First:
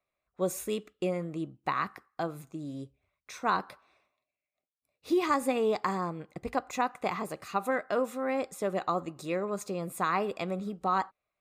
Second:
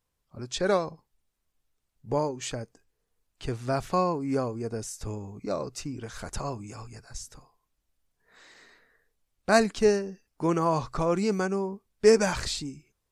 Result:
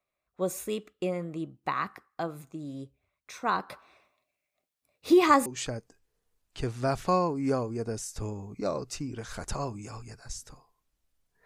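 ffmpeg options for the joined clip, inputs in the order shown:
-filter_complex "[0:a]asettb=1/sr,asplit=3[a][b][c];[a]atrim=end=3.704[d];[b]atrim=start=3.7:end=5.46,asetpts=PTS-STARTPTS,afade=t=in:d=0.004:c=qsin,afade=t=out:st=1.756:d=0.004:c=qsin,acontrast=78[e];[c]atrim=start=5.456[f];[d][e]acrossfade=d=0.004:c1=hsin:c2=qsin[g];[g][f]acrossfade=d=0.004:c1=qsin:c2=hsin,apad=whole_dur=11.45,atrim=end=11.45,atrim=end=5.462[h];[1:a]atrim=start=2.308:end=8.3[i];[h][i]acrossfade=d=0.004:c1=hsin:c2=hsin"

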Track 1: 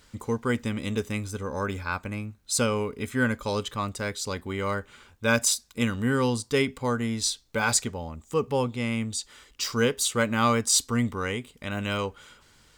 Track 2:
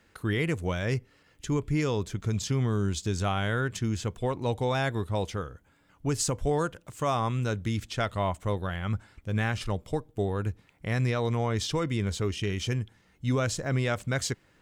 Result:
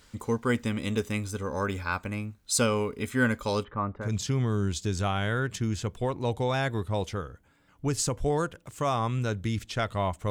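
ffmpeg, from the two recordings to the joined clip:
-filter_complex "[0:a]asplit=3[a][b][c];[a]afade=t=out:st=3.63:d=0.02[d];[b]lowpass=f=1.7k:w=0.5412,lowpass=f=1.7k:w=1.3066,afade=t=in:st=3.63:d=0.02,afade=t=out:st=4.12:d=0.02[e];[c]afade=t=in:st=4.12:d=0.02[f];[d][e][f]amix=inputs=3:normalize=0,apad=whole_dur=10.3,atrim=end=10.3,atrim=end=4.12,asetpts=PTS-STARTPTS[g];[1:a]atrim=start=2.17:end=8.51,asetpts=PTS-STARTPTS[h];[g][h]acrossfade=d=0.16:c1=tri:c2=tri"

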